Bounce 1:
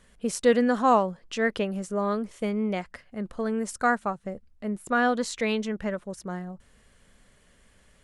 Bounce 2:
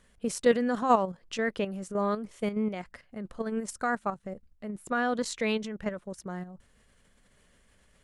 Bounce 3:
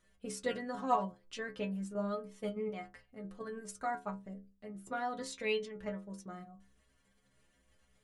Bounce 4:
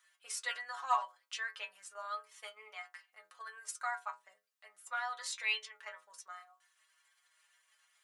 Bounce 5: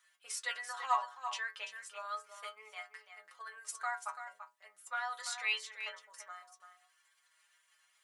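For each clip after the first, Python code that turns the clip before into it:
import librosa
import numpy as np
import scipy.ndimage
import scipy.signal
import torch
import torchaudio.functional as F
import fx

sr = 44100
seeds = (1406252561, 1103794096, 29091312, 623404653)

y1 = fx.level_steps(x, sr, step_db=9)
y2 = fx.stiff_resonator(y1, sr, f0_hz=63.0, decay_s=0.43, stiffness=0.008)
y2 = y2 * librosa.db_to_amplitude(1.0)
y3 = scipy.signal.sosfilt(scipy.signal.butter(4, 1000.0, 'highpass', fs=sr, output='sos'), y2)
y3 = y3 * librosa.db_to_amplitude(5.0)
y4 = y3 + 10.0 ** (-9.5 / 20.0) * np.pad(y3, (int(337 * sr / 1000.0), 0))[:len(y3)]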